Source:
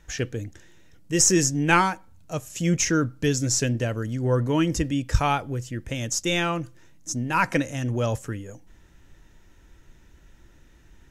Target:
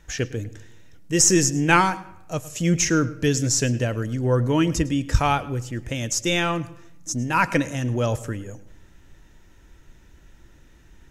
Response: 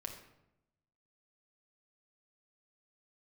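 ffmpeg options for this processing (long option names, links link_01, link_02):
-filter_complex "[0:a]asplit=2[link_01][link_02];[1:a]atrim=start_sample=2205,adelay=106[link_03];[link_02][link_03]afir=irnorm=-1:irlink=0,volume=-15.5dB[link_04];[link_01][link_04]amix=inputs=2:normalize=0,volume=2dB"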